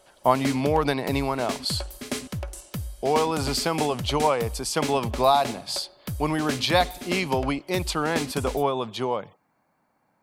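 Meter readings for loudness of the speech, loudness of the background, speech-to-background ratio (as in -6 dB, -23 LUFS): -25.5 LUFS, -34.0 LUFS, 8.5 dB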